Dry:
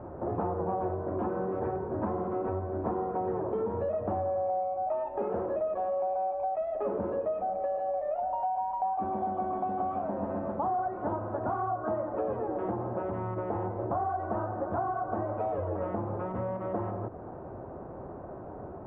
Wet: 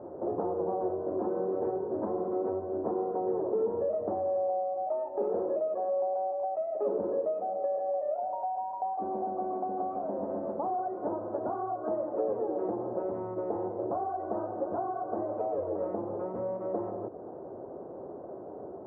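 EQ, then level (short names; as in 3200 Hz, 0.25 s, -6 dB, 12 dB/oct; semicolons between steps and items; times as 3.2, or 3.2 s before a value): band-pass 440 Hz, Q 1.4; +3.0 dB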